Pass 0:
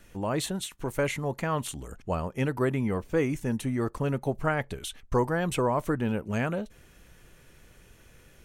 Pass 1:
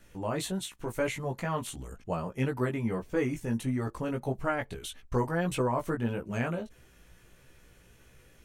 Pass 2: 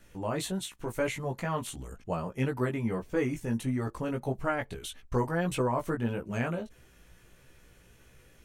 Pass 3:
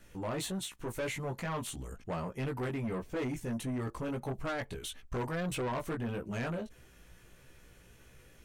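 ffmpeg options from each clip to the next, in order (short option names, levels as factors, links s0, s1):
-af "flanger=delay=15.5:depth=2.3:speed=1.6"
-af anull
-af "asoftclip=type=tanh:threshold=0.0282"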